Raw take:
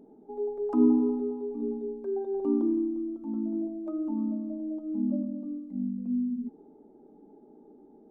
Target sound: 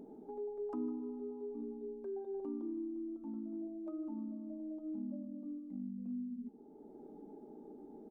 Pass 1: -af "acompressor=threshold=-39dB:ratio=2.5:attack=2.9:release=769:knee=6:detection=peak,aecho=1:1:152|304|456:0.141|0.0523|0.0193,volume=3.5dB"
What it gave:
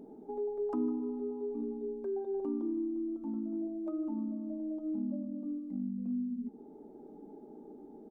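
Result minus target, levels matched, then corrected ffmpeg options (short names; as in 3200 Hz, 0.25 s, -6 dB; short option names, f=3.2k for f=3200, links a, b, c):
compressor: peak gain reduction -6.5 dB
-af "acompressor=threshold=-49.5dB:ratio=2.5:attack=2.9:release=769:knee=6:detection=peak,aecho=1:1:152|304|456:0.141|0.0523|0.0193,volume=3.5dB"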